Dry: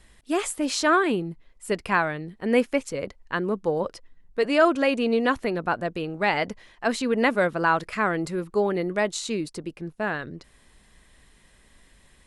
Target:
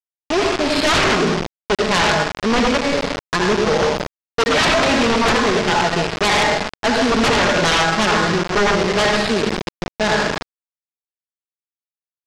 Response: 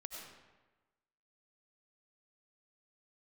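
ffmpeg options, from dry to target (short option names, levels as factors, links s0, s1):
-filter_complex "[0:a]agate=range=0.398:threshold=0.00631:ratio=16:detection=peak,aecho=1:1:4.8:0.61[s0];[1:a]atrim=start_sample=2205,asetrate=61740,aresample=44100[s1];[s0][s1]afir=irnorm=-1:irlink=0,asplit=2[s2][s3];[s3]acompressor=threshold=0.0178:ratio=8,volume=0.944[s4];[s2][s4]amix=inputs=2:normalize=0,equalizer=f=110:w=0.63:g=-3,aresample=11025,acrusher=bits=4:mix=0:aa=0.000001,aresample=44100,highshelf=f=3300:g=-9,aeval=exprs='0.251*sin(PI/2*5.01*val(0)/0.251)':c=same"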